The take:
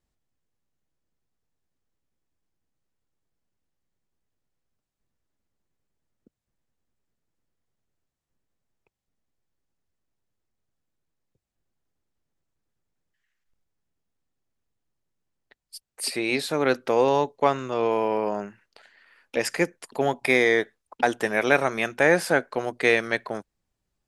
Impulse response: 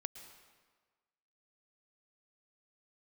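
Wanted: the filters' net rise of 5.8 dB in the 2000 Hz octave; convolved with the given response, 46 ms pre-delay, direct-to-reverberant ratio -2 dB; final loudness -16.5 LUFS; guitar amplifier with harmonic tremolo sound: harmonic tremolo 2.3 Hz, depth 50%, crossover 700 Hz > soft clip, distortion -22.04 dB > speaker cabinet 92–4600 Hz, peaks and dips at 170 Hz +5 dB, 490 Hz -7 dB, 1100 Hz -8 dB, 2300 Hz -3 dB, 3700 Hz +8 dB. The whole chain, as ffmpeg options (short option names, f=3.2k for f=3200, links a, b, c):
-filter_complex "[0:a]equalizer=f=2k:t=o:g=8.5,asplit=2[a][b];[1:a]atrim=start_sample=2205,adelay=46[c];[b][c]afir=irnorm=-1:irlink=0,volume=4.5dB[d];[a][d]amix=inputs=2:normalize=0,acrossover=split=700[e][f];[e]aeval=exprs='val(0)*(1-0.5/2+0.5/2*cos(2*PI*2.3*n/s))':c=same[g];[f]aeval=exprs='val(0)*(1-0.5/2-0.5/2*cos(2*PI*2.3*n/s))':c=same[h];[g][h]amix=inputs=2:normalize=0,asoftclip=threshold=-3.5dB,highpass=92,equalizer=f=170:t=q:w=4:g=5,equalizer=f=490:t=q:w=4:g=-7,equalizer=f=1.1k:t=q:w=4:g=-8,equalizer=f=2.3k:t=q:w=4:g=-3,equalizer=f=3.7k:t=q:w=4:g=8,lowpass=f=4.6k:w=0.5412,lowpass=f=4.6k:w=1.3066,volume=4dB"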